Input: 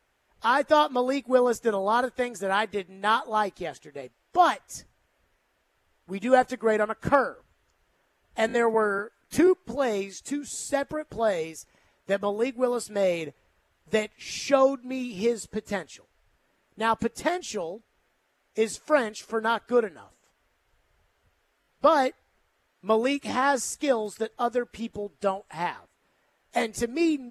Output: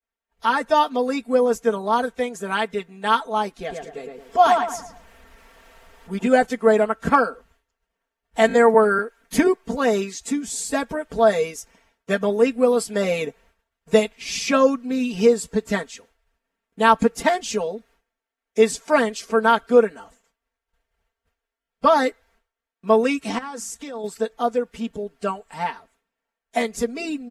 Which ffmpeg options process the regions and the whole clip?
ffmpeg -i in.wav -filter_complex "[0:a]asettb=1/sr,asplit=3[link_01][link_02][link_03];[link_01]atrim=end=3.594[link_04];[link_02]atrim=start=3.59:end=6.27,asetpts=PTS-STARTPTS,afade=type=in:duration=0.004:curve=qsin,afade=type=out:start_time=2.676:duration=0.004:curve=qsin,acompressor=mode=upward:threshold=-42dB:ratio=2.5:attack=3.2:release=140:knee=2.83:detection=peak,asplit=2[link_05][link_06];[link_06]adelay=110,lowpass=frequency=2000:poles=1,volume=-3dB,asplit=2[link_07][link_08];[link_08]adelay=110,lowpass=frequency=2000:poles=1,volume=0.4,asplit=2[link_09][link_10];[link_10]adelay=110,lowpass=frequency=2000:poles=1,volume=0.4,asplit=2[link_11][link_12];[link_12]adelay=110,lowpass=frequency=2000:poles=1,volume=0.4,asplit=2[link_13][link_14];[link_14]adelay=110,lowpass=frequency=2000:poles=1,volume=0.4[link_15];[link_05][link_07][link_09][link_11][link_13][link_15]amix=inputs=6:normalize=0,atrim=end_sample=118188[link_16];[link_03]atrim=start=6.266[link_17];[link_04][link_16]acrossfade=duration=0.004:curve1=hsin:curve2=qsin[link_18];[link_18][link_17]acrossfade=duration=0.004:curve1=qsin:curve2=hsin,asettb=1/sr,asplit=3[link_19][link_20][link_21];[link_19]atrim=end=23.384[link_22];[link_20]atrim=start=23.38:end=24.04,asetpts=PTS-STARTPTS,afade=type=in:duration=0.004:curve=qsin,afade=type=out:start_time=0.656:duration=0.004:curve=qsin,acompressor=threshold=-32dB:ratio=6:attack=3.2:release=140:knee=1:detection=peak,bandreject=frequency=50:width_type=h:width=6,bandreject=frequency=100:width_type=h:width=6,bandreject=frequency=150:width_type=h:width=6,bandreject=frequency=200:width_type=h:width=6,bandreject=frequency=250:width_type=h:width=6[link_23];[link_21]atrim=start=24.036[link_24];[link_22][link_23]acrossfade=duration=0.004:curve1=hsin:curve2=qsin[link_25];[link_25][link_24]acrossfade=duration=0.004:curve1=qsin:curve2=hsin,agate=range=-33dB:threshold=-57dB:ratio=3:detection=peak,aecho=1:1:4.4:0.85,dynaudnorm=framelen=550:gausssize=21:maxgain=11.5dB" out.wav

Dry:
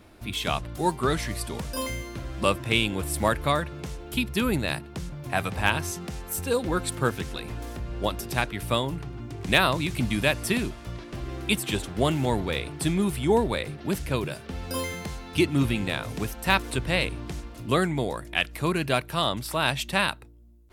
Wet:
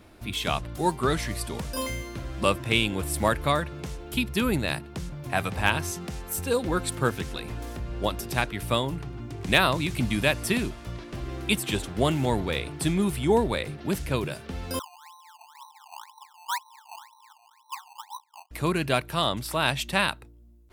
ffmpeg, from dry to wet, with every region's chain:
ffmpeg -i in.wav -filter_complex "[0:a]asettb=1/sr,asplit=3[link_01][link_02][link_03];[link_01]atrim=end=14.794[link_04];[link_02]atrim=start=14.79:end=18.51,asetpts=PTS-STARTPTS,afade=type=in:duration=0.004:curve=qsin,afade=type=out:start_time=3.716:duration=0.004:curve=qsin,asuperpass=centerf=940:order=12:qfactor=3.5,acrusher=samples=17:mix=1:aa=0.000001:lfo=1:lforange=17:lforate=2[link_05];[link_03]atrim=start=18.506[link_06];[link_04][link_05]acrossfade=duration=0.004:curve1=hsin:curve2=qsin[link_07];[link_07][link_06]acrossfade=duration=0.004:curve1=qsin:curve2=hsin" out.wav

